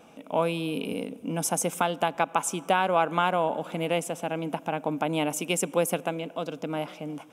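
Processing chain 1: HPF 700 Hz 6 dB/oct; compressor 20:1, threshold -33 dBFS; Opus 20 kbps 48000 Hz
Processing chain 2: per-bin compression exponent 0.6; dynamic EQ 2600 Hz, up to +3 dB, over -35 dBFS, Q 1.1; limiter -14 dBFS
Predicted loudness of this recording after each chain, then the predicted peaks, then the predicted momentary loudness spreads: -39.5, -27.0 LUFS; -18.5, -14.0 dBFS; 4, 3 LU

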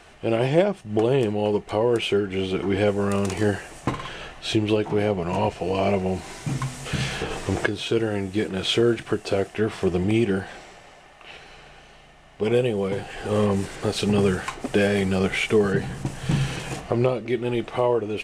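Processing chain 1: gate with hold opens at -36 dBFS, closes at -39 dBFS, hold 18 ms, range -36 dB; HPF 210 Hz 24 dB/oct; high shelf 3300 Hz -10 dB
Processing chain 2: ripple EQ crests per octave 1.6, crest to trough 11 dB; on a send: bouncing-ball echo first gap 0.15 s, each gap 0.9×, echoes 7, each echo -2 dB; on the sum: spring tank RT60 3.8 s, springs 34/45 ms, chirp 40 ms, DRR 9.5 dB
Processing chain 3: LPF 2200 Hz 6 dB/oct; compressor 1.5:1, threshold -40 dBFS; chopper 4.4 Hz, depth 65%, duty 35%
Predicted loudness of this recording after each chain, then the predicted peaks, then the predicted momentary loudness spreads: -25.5, -18.0, -35.5 LUFS; -6.0, -2.5, -16.5 dBFS; 10, 8, 11 LU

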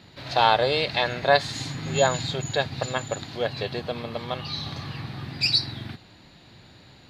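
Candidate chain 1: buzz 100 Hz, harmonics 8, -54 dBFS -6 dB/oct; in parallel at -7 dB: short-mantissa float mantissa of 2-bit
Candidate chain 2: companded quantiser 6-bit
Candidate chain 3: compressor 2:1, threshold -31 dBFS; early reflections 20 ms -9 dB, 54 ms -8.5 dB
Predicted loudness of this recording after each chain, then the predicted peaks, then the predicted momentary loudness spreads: -22.0, -25.5, -31.0 LUFS; -2.0, -4.5, -12.0 dBFS; 14, 14, 18 LU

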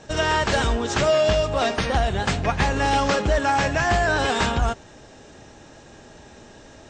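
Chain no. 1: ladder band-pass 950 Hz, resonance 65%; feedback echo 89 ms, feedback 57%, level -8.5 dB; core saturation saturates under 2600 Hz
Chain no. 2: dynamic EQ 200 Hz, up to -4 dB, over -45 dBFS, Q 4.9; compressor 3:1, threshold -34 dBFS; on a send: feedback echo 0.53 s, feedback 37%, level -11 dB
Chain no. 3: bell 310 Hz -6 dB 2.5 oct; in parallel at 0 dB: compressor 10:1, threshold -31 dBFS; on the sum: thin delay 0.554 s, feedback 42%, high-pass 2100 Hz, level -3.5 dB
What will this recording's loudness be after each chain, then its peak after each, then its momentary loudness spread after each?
-31.5, -33.0, -21.0 LUFS; -16.0, -18.0, -7.5 dBFS; 6, 14, 19 LU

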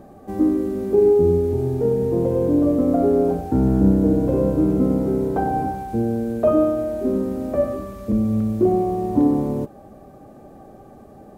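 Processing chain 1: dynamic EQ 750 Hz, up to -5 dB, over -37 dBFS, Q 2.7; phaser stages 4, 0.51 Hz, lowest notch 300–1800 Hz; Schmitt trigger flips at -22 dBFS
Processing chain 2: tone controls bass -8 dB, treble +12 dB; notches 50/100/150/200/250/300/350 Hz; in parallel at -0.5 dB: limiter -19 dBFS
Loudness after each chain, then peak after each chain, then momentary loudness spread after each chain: -26.0, -18.5 LUFS; -16.5, -5.5 dBFS; 11, 6 LU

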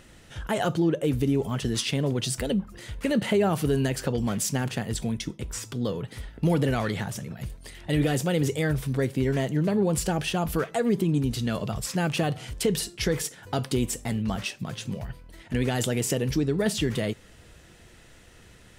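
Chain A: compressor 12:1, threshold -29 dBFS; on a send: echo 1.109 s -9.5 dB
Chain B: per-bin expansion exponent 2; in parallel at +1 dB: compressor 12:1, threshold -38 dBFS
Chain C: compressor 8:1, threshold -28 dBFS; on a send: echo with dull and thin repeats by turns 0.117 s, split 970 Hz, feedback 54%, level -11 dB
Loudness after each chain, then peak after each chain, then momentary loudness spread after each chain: -34.0, -30.0, -33.0 LUFS; -16.5, -15.5, -15.5 dBFS; 6, 12, 8 LU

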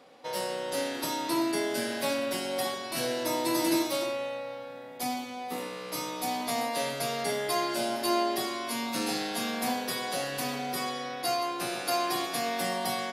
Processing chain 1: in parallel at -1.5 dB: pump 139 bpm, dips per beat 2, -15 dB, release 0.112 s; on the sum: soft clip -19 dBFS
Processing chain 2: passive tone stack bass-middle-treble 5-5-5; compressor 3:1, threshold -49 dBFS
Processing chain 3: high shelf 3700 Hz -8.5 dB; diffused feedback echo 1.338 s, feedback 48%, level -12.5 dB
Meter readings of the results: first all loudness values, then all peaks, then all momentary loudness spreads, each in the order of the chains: -27.5, -48.5, -32.0 LUFS; -19.0, -34.5, -16.5 dBFS; 6, 4, 7 LU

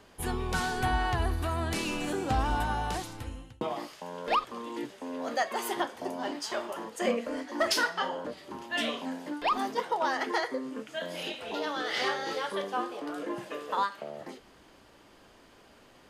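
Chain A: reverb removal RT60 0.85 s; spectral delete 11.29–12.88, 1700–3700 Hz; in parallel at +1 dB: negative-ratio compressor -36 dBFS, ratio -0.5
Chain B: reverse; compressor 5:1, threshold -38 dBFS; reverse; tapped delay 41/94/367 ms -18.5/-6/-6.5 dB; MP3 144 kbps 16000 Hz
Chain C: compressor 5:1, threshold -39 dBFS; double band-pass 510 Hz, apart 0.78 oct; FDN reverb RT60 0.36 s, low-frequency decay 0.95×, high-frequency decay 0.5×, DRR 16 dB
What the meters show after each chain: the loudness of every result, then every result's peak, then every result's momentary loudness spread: -30.0, -40.0, -51.0 LUFS; -15.5, -26.0, -33.0 dBFS; 5, 6, 10 LU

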